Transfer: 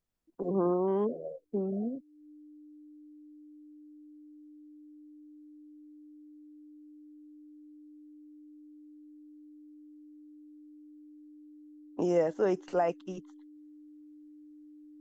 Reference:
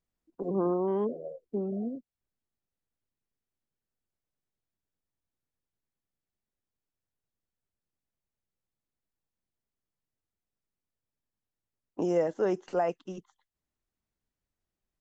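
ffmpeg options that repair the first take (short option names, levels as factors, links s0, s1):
-af "bandreject=f=300:w=30"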